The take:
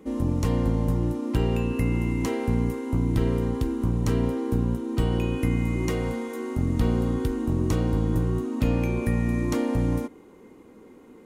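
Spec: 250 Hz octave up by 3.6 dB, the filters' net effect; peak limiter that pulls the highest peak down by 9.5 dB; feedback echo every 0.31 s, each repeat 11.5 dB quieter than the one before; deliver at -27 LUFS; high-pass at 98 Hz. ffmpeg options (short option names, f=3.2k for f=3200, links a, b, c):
-af "highpass=98,equalizer=f=250:t=o:g=4.5,alimiter=limit=-19.5dB:level=0:latency=1,aecho=1:1:310|620|930:0.266|0.0718|0.0194,volume=1dB"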